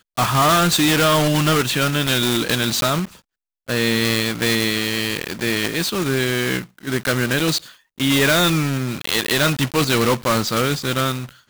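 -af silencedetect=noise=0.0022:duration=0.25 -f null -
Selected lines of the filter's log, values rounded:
silence_start: 3.21
silence_end: 3.67 | silence_duration: 0.45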